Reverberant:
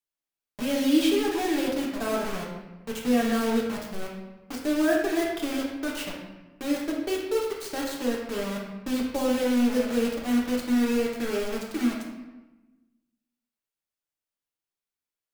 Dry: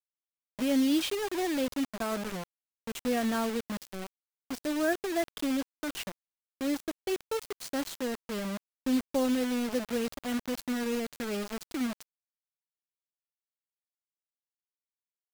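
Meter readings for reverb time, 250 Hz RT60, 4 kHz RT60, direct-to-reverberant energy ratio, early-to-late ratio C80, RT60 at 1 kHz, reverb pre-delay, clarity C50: 1.1 s, 1.4 s, 0.75 s, -3.0 dB, 5.0 dB, 1.1 s, 3 ms, 2.5 dB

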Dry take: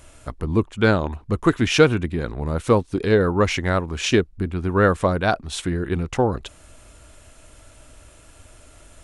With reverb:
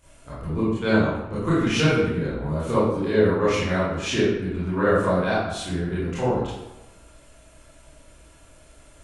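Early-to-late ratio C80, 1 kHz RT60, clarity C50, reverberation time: 2.5 dB, 1.0 s, -1.5 dB, 1.0 s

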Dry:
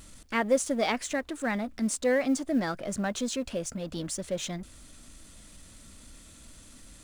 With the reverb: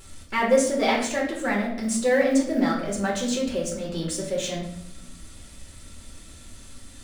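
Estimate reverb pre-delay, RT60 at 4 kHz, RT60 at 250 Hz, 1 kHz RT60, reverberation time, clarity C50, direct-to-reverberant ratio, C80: 5 ms, 0.60 s, 1.1 s, 0.70 s, 0.80 s, 5.5 dB, -2.5 dB, 9.0 dB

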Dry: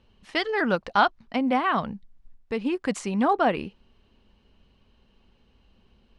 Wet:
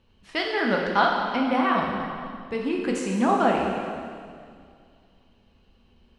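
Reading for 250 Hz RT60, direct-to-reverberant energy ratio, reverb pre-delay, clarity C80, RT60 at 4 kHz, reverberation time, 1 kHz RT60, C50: 2.4 s, -1.0 dB, 6 ms, 3.0 dB, 2.1 s, 2.2 s, 2.1 s, 1.5 dB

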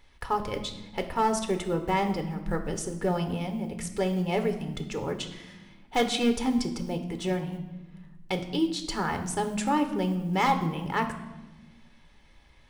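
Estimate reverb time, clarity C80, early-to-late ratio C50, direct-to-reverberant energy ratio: 1.1 s, 12.5 dB, 10.0 dB, 6.5 dB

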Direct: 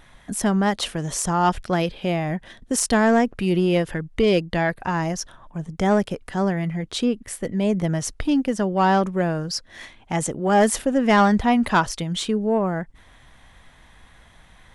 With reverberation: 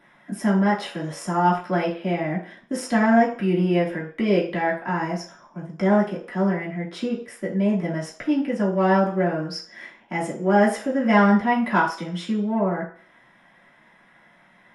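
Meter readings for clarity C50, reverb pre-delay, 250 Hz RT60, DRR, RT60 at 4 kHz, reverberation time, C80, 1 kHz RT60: 8.5 dB, 3 ms, 0.40 s, -6.5 dB, 0.55 s, 0.45 s, 12.0 dB, 0.50 s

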